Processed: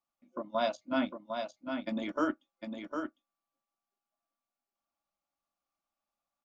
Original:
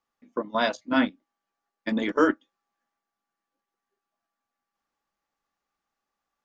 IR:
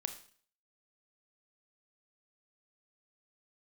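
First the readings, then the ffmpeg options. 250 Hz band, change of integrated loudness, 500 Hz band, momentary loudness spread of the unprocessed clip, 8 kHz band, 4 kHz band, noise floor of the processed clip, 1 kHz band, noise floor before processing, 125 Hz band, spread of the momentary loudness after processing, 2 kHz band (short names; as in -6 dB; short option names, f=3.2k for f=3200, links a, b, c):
-7.5 dB, -9.5 dB, -6.5 dB, 13 LU, n/a, -7.5 dB, under -85 dBFS, -6.0 dB, under -85 dBFS, -7.5 dB, 12 LU, -10.5 dB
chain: -filter_complex "[0:a]superequalizer=7b=0.355:8b=1.78:11b=0.447,asplit=2[a][b];[b]aecho=0:1:754:0.501[c];[a][c]amix=inputs=2:normalize=0,volume=-8.5dB"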